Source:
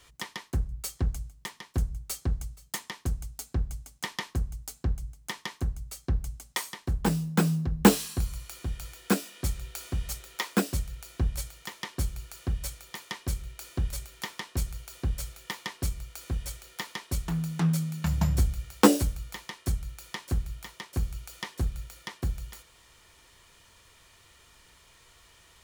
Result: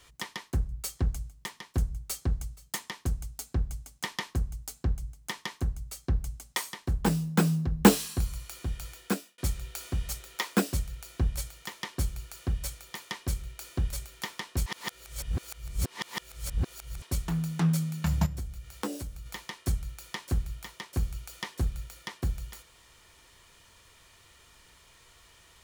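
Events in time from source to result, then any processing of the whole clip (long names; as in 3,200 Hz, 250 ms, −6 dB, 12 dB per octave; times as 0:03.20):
0:08.94–0:09.38: fade out
0:14.66–0:17.02: reverse
0:18.26–0:19.26: downward compressor 2 to 1, threshold −43 dBFS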